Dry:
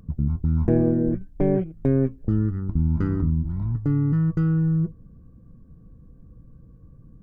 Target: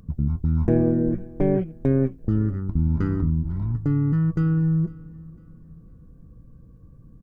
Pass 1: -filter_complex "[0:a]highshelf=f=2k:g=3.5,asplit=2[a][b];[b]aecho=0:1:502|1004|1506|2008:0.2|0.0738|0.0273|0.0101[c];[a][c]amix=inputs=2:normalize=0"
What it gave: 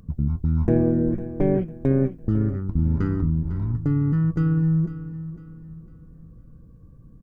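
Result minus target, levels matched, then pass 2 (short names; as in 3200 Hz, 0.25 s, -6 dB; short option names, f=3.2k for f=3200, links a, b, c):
echo-to-direct +8.5 dB
-filter_complex "[0:a]highshelf=f=2k:g=3.5,asplit=2[a][b];[b]aecho=0:1:502|1004|1506:0.075|0.0277|0.0103[c];[a][c]amix=inputs=2:normalize=0"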